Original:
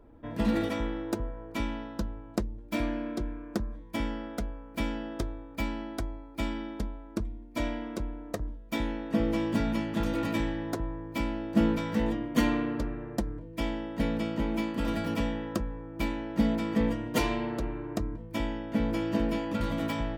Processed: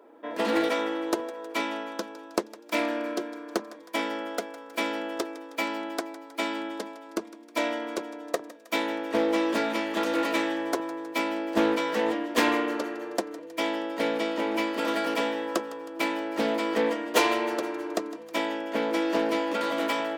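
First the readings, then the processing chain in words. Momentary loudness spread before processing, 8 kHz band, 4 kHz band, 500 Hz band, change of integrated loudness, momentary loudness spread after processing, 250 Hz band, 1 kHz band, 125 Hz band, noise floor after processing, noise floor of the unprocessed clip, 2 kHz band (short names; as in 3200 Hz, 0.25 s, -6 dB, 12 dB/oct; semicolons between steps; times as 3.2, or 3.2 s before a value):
9 LU, +7.5 dB, +8.0 dB, +7.0 dB, +3.0 dB, 9 LU, -0.5 dB, +8.0 dB, -16.5 dB, -47 dBFS, -47 dBFS, +8.0 dB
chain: HPF 350 Hz 24 dB/oct; thinning echo 0.158 s, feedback 64%, high-pass 790 Hz, level -16 dB; Doppler distortion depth 0.22 ms; gain +8 dB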